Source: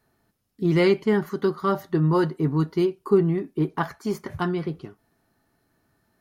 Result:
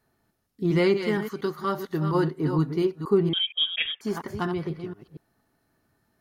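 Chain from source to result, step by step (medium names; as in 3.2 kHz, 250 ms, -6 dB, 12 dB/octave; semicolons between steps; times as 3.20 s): chunks repeated in reverse 235 ms, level -8 dB; 0.97–2.15 s: tilt shelf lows -3.5 dB, about 1.4 kHz; 3.33–4.01 s: frequency inversion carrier 3.5 kHz; trim -2.5 dB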